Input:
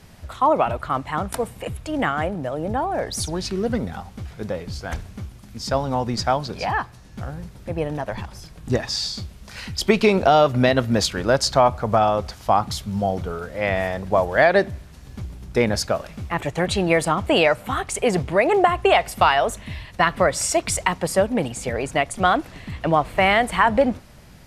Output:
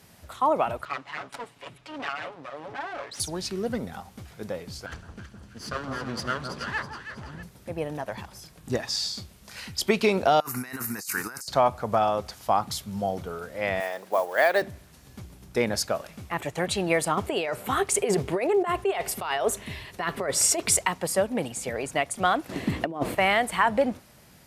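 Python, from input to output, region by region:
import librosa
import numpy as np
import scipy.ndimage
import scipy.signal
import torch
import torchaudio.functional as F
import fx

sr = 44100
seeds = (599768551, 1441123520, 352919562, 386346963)

y = fx.chain(x, sr, fx.lower_of_two(delay_ms=7.1),
    fx.lowpass(hz=4300.0, slope=12),
    fx.low_shelf(hz=490.0, db=-10.5), at=(0.85, 3.2))
y = fx.chain(y, sr, fx.lower_of_two(delay_ms=0.65),
    fx.air_absorb(metres=69.0),
    fx.echo_alternate(ms=162, hz=1200.0, feedback_pct=65, wet_db=-5.0), at=(4.86, 7.43))
y = fx.chain(y, sr, fx.riaa(side='recording'),
    fx.over_compress(threshold_db=-27.0, ratio=-1.0),
    fx.fixed_phaser(hz=1400.0, stages=4), at=(10.4, 11.48))
y = fx.chain(y, sr, fx.highpass(hz=400.0, slope=12),
    fx.quant_float(bits=4), at=(13.8, 14.62))
y = fx.chain(y, sr, fx.over_compress(threshold_db=-22.0, ratio=-1.0),
    fx.peak_eq(hz=400.0, db=10.5, octaves=0.27), at=(17.17, 20.79))
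y = fx.chain(y, sr, fx.peak_eq(hz=320.0, db=14.0, octaves=1.8),
    fx.over_compress(threshold_db=-18.0, ratio=-0.5), at=(22.49, 23.15))
y = fx.highpass(y, sr, hz=160.0, slope=6)
y = fx.high_shelf(y, sr, hz=9500.0, db=10.5)
y = F.gain(torch.from_numpy(y), -5.0).numpy()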